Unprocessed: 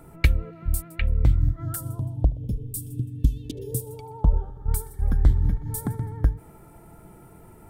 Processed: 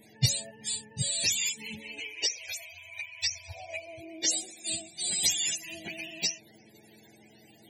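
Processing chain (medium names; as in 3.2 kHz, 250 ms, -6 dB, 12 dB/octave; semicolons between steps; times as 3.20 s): spectrum inverted on a logarithmic axis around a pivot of 540 Hz; Butterworth band-stop 1.2 kHz, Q 1; trim -2.5 dB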